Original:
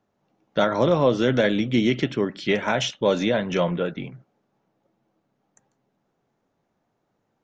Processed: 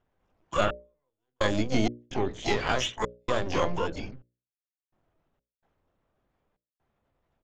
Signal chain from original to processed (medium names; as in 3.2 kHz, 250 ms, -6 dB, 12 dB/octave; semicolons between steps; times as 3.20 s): LPC vocoder at 8 kHz pitch kept; harmony voices -7 st -15 dB, +12 st -6 dB; trance gate "xxx...xx.xxxx.x" 64 bpm -60 dB; in parallel at -8 dB: saturation -22 dBFS, distortion -6 dB; on the sum: hum notches 60/120/180/240/300/360/420/480/540/600 Hz; trim -6 dB